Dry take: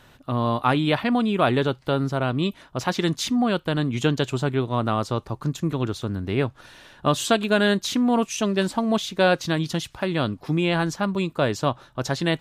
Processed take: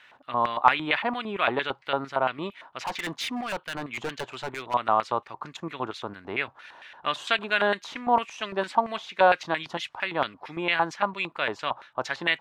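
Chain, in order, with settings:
auto-filter band-pass square 4.4 Hz 900–2,200 Hz
0:02.79–0:04.74: gain into a clipping stage and back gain 34.5 dB
level +7.5 dB

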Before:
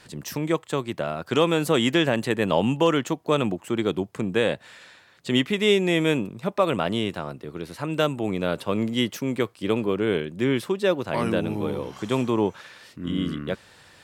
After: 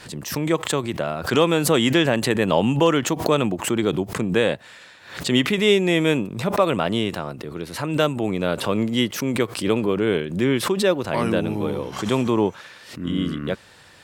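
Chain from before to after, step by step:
background raised ahead of every attack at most 99 dB per second
level +2.5 dB

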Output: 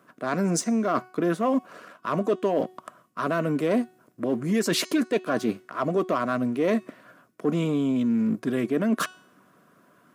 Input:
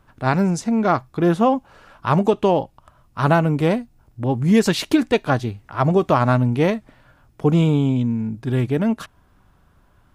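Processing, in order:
harmonic and percussive parts rebalanced percussive +6 dB
leveller curve on the samples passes 1
parametric band 3,600 Hz −6 dB 1.3 octaves
reversed playback
downward compressor 10 to 1, threshold −21 dBFS, peak gain reduction 16 dB
reversed playback
high-pass filter 190 Hz 24 dB per octave
hum removal 370.2 Hz, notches 25
in parallel at +1 dB: brickwall limiter −20 dBFS, peak gain reduction 9.5 dB
on the sum: Butterworth band-reject 850 Hz, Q 4.3
level −3.5 dB

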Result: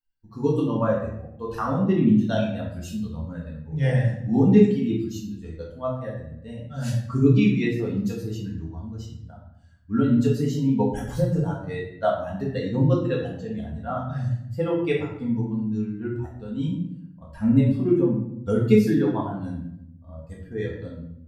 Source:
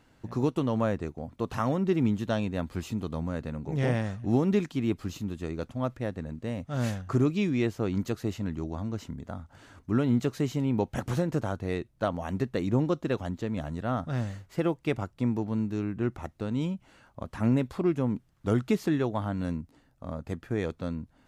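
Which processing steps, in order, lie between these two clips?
spectral dynamics exaggerated over time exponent 2
rectangular room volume 180 cubic metres, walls mixed, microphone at 1.7 metres
level +3.5 dB

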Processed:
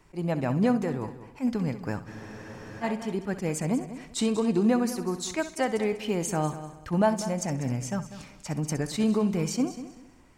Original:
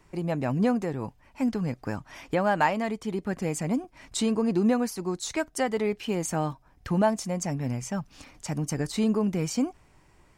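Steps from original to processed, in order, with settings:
echo machine with several playback heads 65 ms, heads first and third, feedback 42%, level −14 dB
frozen spectrum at 0:02.09, 0.74 s
level that may rise only so fast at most 360 dB per second

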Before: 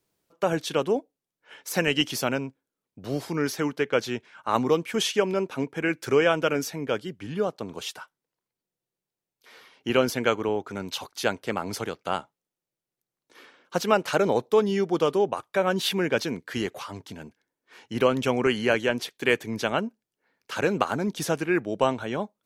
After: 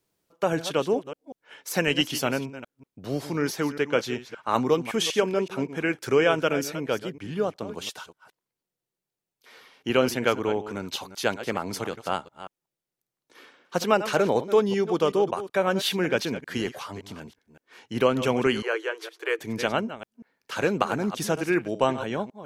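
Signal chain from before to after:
delay that plays each chunk backwards 189 ms, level −12.5 dB
0:18.62–0:19.39: Chebyshev high-pass with heavy ripple 320 Hz, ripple 9 dB

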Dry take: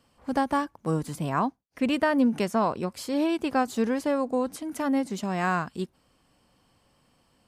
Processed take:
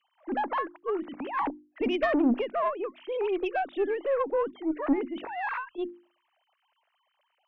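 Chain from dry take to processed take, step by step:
three sine waves on the formant tracks
tube saturation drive 17 dB, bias 0.35
mains-hum notches 50/100/150/200/250/300/350 Hz

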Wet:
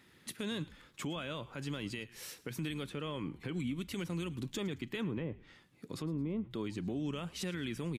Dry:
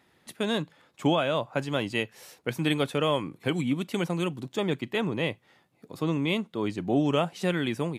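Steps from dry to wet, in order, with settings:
0:02.89–0:03.60: low-pass filter 3,000 Hz 6 dB per octave
0:05.02–0:06.51: treble cut that deepens with the level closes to 750 Hz, closed at −23 dBFS
parametric band 720 Hz −11.5 dB 1 octave
downward compressor, threshold −35 dBFS, peak gain reduction 13.5 dB
brickwall limiter −32 dBFS, peak gain reduction 10.5 dB
echo with shifted repeats 110 ms, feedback 34%, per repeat −100 Hz, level −19.5 dB
level +3 dB

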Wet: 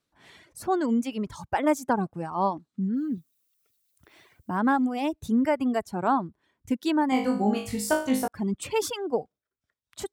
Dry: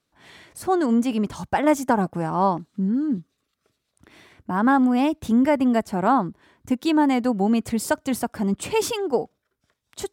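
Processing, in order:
reverb reduction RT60 1.7 s
0:02.96–0:04.50: background noise violet −69 dBFS
0:07.10–0:08.28: flutter between parallel walls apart 3.3 metres, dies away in 0.42 s
level −4 dB

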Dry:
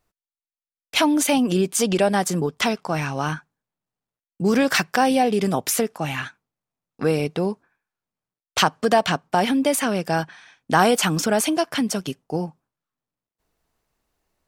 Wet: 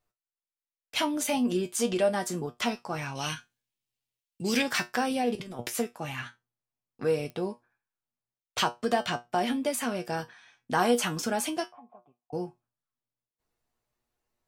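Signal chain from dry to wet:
0:03.15–0:04.62: high shelf with overshoot 1,900 Hz +11 dB, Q 1.5
0:05.35–0:05.75: compressor whose output falls as the input rises −27 dBFS, ratio −0.5
0:11.68–0:12.33: formant resonators in series a
tuned comb filter 120 Hz, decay 0.18 s, harmonics all, mix 80%
digital clicks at 0:07.30, −26 dBFS
level −2 dB

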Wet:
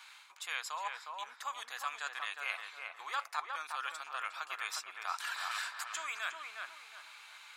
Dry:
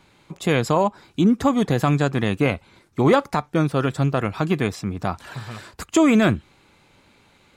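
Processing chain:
reversed playback
downward compressor 5 to 1, threshold −34 dBFS, peak gain reduction 19.5 dB
reversed playback
high-pass filter 1,100 Hz 24 dB per octave
notch filter 2,000 Hz, Q 26
feedback echo with a low-pass in the loop 360 ms, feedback 38%, low-pass 1,800 Hz, level −3 dB
level +5.5 dB

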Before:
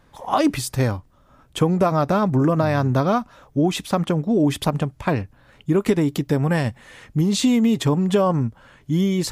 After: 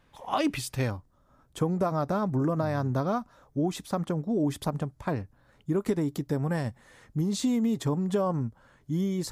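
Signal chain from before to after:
parametric band 2,700 Hz +6 dB 0.84 octaves, from 0:00.90 −8 dB
level −8.5 dB

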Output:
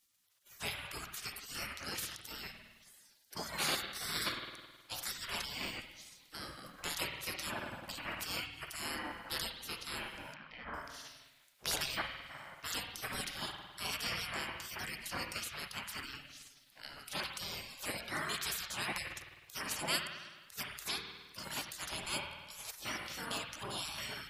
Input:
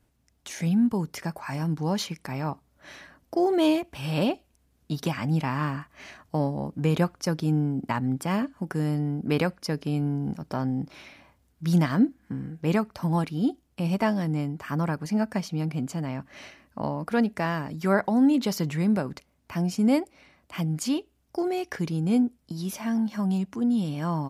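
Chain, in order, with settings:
gate on every frequency bin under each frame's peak −15 dB weak
0:10.34–0:10.74: low-pass filter 2,600 Hz 24 dB per octave
spring reverb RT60 1.4 s, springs 52 ms, chirp 45 ms, DRR 3 dB
gate on every frequency bin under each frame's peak −15 dB weak
level +8 dB

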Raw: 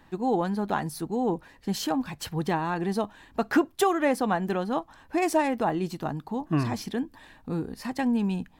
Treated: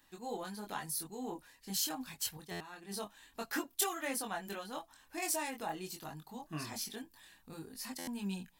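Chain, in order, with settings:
0:02.37–0:02.91: downward expander −21 dBFS
multi-voice chorus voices 6, 0.25 Hz, delay 23 ms, depth 3.9 ms
first-order pre-emphasis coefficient 0.9
buffer that repeats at 0:02.51/0:07.98, samples 512, times 7
level +5.5 dB

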